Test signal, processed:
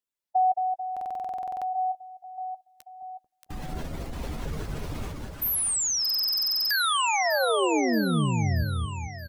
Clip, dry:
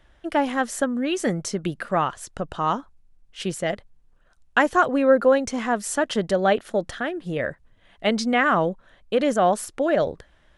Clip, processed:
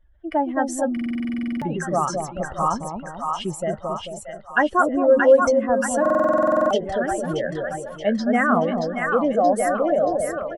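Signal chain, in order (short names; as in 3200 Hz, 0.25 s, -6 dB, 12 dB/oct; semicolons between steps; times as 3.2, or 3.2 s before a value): spectral contrast raised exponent 1.9; doubler 13 ms -14 dB; on a send: split-band echo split 770 Hz, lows 0.22 s, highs 0.628 s, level -3 dB; on the sum: stuck buffer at 0.92/6.01, samples 2048, times 14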